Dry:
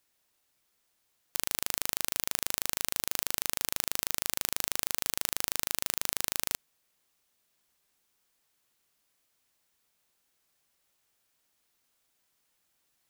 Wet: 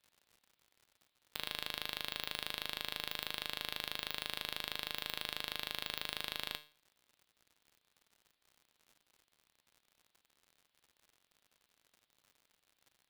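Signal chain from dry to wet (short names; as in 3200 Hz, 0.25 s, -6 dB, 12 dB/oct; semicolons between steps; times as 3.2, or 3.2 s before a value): resonant high shelf 5000 Hz -10.5 dB, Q 3; resonator 150 Hz, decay 0.39 s, harmonics all, mix 70%; crackle 96/s -54 dBFS; gain +2 dB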